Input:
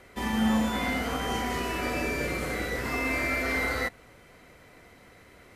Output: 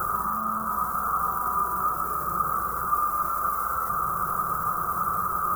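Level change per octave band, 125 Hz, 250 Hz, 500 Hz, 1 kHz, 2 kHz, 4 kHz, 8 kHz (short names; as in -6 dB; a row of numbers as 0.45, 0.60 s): -3.0 dB, -11.5 dB, -7.5 dB, +11.5 dB, -9.0 dB, under -20 dB, +1.0 dB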